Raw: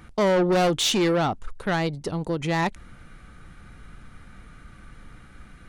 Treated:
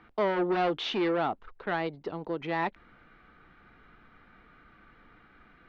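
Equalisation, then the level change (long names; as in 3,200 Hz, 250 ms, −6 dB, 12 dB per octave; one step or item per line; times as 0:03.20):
high-frequency loss of the air 250 metres
three-way crossover with the lows and the highs turned down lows −15 dB, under 260 Hz, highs −18 dB, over 5,400 Hz
notch filter 550 Hz, Q 12
−3.0 dB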